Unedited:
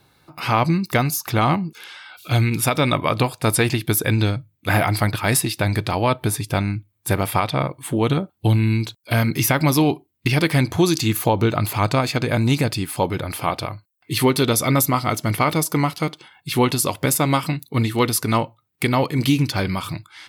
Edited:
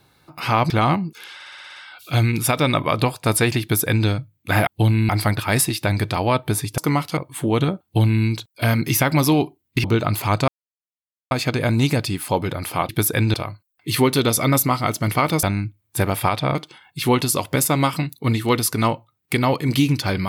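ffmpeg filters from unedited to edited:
-filter_complex "[0:a]asplit=19[s0][s1][s2][s3][s4][s5][s6][s7][s8][s9][s10][s11][s12][s13][s14][s15][s16][s17][s18];[s0]atrim=end=0.702[s19];[s1]atrim=start=1.298:end=2.002[s20];[s2]atrim=start=1.938:end=2.002[s21];[s3]atrim=start=1.938:end=2.002[s22];[s4]atrim=start=1.938:end=2.002[s23];[s5]atrim=start=1.938:end=2.002[s24];[s6]atrim=start=1.938:end=2.002[s25];[s7]atrim=start=1.938:end=2.002[s26];[s8]atrim=start=1.938:end=4.852[s27];[s9]atrim=start=8.318:end=8.742[s28];[s10]atrim=start=4.848:end=6.542[s29];[s11]atrim=start=15.658:end=16.052[s30];[s12]atrim=start=7.658:end=10.332[s31];[s13]atrim=start=11.348:end=11.99,asetpts=PTS-STARTPTS,afade=t=out:st=0.638:d=0.004:c=hsin,apad=pad_dur=0.83[s32];[s14]atrim=start=11.99:end=13.572,asetpts=PTS-STARTPTS,afade=t=in:d=0.004:c=hsin[s33];[s15]atrim=start=3.798:end=4.252[s34];[s16]atrim=start=13.568:end=15.662[s35];[s17]atrim=start=6.538:end=7.662[s36];[s18]atrim=start=16.048[s37];[s19][s20]acrossfade=d=0.004:c1=hsin:c2=hsin[s38];[s38][s21]acrossfade=d=0.004:c1=hsin:c2=hsin[s39];[s39][s22]acrossfade=d=0.004:c1=hsin:c2=hsin[s40];[s40][s23]acrossfade=d=0.004:c1=hsin:c2=hsin[s41];[s41][s24]acrossfade=d=0.004:c1=hsin:c2=hsin[s42];[s42][s25]acrossfade=d=0.004:c1=hsin:c2=hsin[s43];[s43][s26]acrossfade=d=0.004:c1=hsin:c2=hsin[s44];[s44][s27]acrossfade=d=0.004:c1=hsin:c2=hsin[s45];[s45][s28]acrossfade=d=0.004:c1=hsin:c2=hsin[s46];[s46][s29]acrossfade=d=0.004:c1=hsin:c2=hsin[s47];[s47][s30]acrossfade=d=0.004:c1=hsin:c2=hsin[s48];[s48][s31]acrossfade=d=0.004:c1=hsin:c2=hsin[s49];[s32][s33]concat=n=2:v=0:a=1[s50];[s49][s50]acrossfade=d=0.004:c1=hsin:c2=hsin[s51];[s51][s34]acrossfade=d=0.004:c1=hsin:c2=hsin[s52];[s52][s35]acrossfade=d=0.004:c1=hsin:c2=hsin[s53];[s53][s36]acrossfade=d=0.004:c1=hsin:c2=hsin[s54];[s54][s37]acrossfade=d=0.004:c1=hsin:c2=hsin"

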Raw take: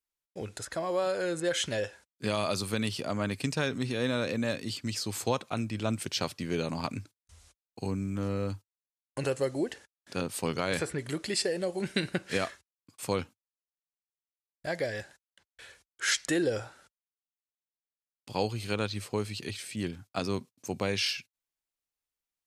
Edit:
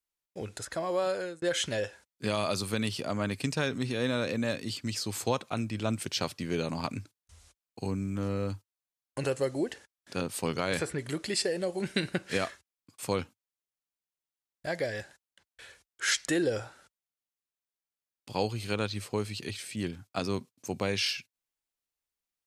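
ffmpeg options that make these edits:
-filter_complex "[0:a]asplit=2[s0][s1];[s0]atrim=end=1.42,asetpts=PTS-STARTPTS,afade=t=out:st=1.12:d=0.3[s2];[s1]atrim=start=1.42,asetpts=PTS-STARTPTS,afade=t=in:d=0.004:c=hsin[s3];[s2][s3]concat=n=2:v=0:a=1"

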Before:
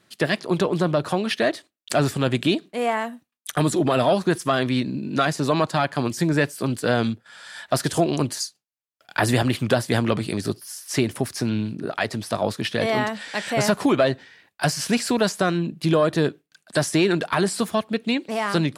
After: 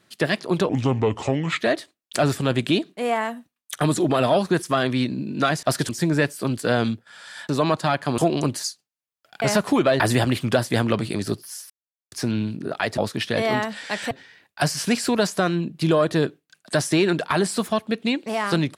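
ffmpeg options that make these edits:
-filter_complex "[0:a]asplit=13[s0][s1][s2][s3][s4][s5][s6][s7][s8][s9][s10][s11][s12];[s0]atrim=end=0.694[s13];[s1]atrim=start=0.69:end=1.37,asetpts=PTS-STARTPTS,asetrate=32634,aresample=44100,atrim=end_sample=40524,asetpts=PTS-STARTPTS[s14];[s2]atrim=start=1.366:end=5.392[s15];[s3]atrim=start=7.678:end=7.942[s16];[s4]atrim=start=6.078:end=7.682[s17];[s5]atrim=start=5.388:end=6.082[s18];[s6]atrim=start=7.938:end=9.182[s19];[s7]atrim=start=13.548:end=14.132[s20];[s8]atrim=start=9.178:end=10.88,asetpts=PTS-STARTPTS,afade=t=out:st=1.698:d=0.004:c=hsin[s21];[s9]atrim=start=10.88:end=11.3,asetpts=PTS-STARTPTS,volume=0[s22];[s10]atrim=start=11.3:end=12.162,asetpts=PTS-STARTPTS,afade=t=in:d=0.004:c=hsin[s23];[s11]atrim=start=12.418:end=13.552[s24];[s12]atrim=start=14.128[s25];[s13][s14]acrossfade=d=0.004:c1=hsin:c2=hsin[s26];[s26][s15]acrossfade=d=0.004:c1=hsin:c2=hsin[s27];[s27][s16]acrossfade=d=0.004:c1=hsin:c2=hsin[s28];[s28][s17]acrossfade=d=0.004:c1=hsin:c2=hsin[s29];[s29][s18]acrossfade=d=0.004:c1=hsin:c2=hsin[s30];[s30][s19]acrossfade=d=0.004:c1=hsin:c2=hsin[s31];[s31][s20]acrossfade=d=0.004:c1=hsin:c2=hsin[s32];[s21][s22][s23]concat=n=3:v=0:a=1[s33];[s32][s33]acrossfade=d=0.004:c1=hsin:c2=hsin[s34];[s34][s24]acrossfade=d=0.004:c1=hsin:c2=hsin[s35];[s35][s25]acrossfade=d=0.004:c1=hsin:c2=hsin"

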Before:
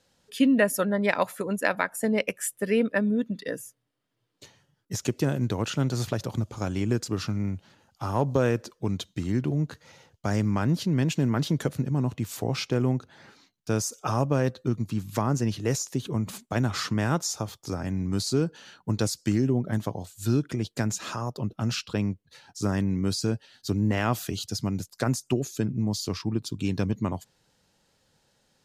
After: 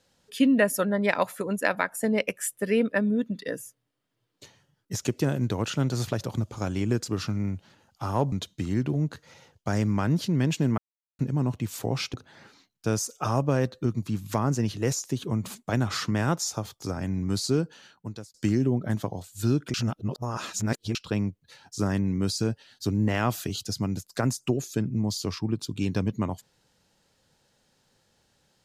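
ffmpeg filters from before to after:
-filter_complex "[0:a]asplit=8[s0][s1][s2][s3][s4][s5][s6][s7];[s0]atrim=end=8.322[s8];[s1]atrim=start=8.898:end=11.36,asetpts=PTS-STARTPTS,afade=t=out:st=2.458:d=0.004:c=hsin[s9];[s2]atrim=start=11.36:end=11.77,asetpts=PTS-STARTPTS,volume=0[s10];[s3]atrim=start=11.77:end=12.722,asetpts=PTS-STARTPTS,afade=t=in:d=0.004:c=hsin[s11];[s4]atrim=start=12.968:end=19.17,asetpts=PTS-STARTPTS,afade=t=out:st=5.442:d=0.76[s12];[s5]atrim=start=19.17:end=20.572,asetpts=PTS-STARTPTS,afade=t=in:d=0.004:c=hsin[s13];[s6]atrim=start=20.568:end=21.782,asetpts=PTS-STARTPTS,areverse[s14];[s7]atrim=start=21.778[s15];[s9][s10][s11]concat=n=3:v=0:a=1[s16];[s8][s16]acrossfade=d=0.004:c1=hsin:c2=hsin[s17];[s12][s13]concat=n=2:v=0:a=1[s18];[s17][s18]acrossfade=d=0.004:c1=hsin:c2=hsin[s19];[s19][s14]acrossfade=d=0.004:c1=hsin:c2=hsin[s20];[s20][s15]acrossfade=d=0.004:c1=hsin:c2=hsin"

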